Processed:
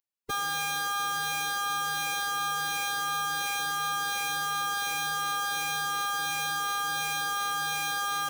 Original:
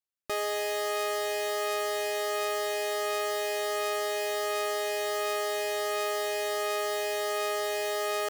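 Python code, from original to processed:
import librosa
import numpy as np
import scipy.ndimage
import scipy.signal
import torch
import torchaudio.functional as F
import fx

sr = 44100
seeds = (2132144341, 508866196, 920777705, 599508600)

y = fx.pitch_keep_formants(x, sr, semitones=11.5)
y = 10.0 ** (-22.0 / 20.0) * np.tanh(y / 10.0 ** (-22.0 / 20.0))
y = F.gain(torch.from_numpy(y), 1.0).numpy()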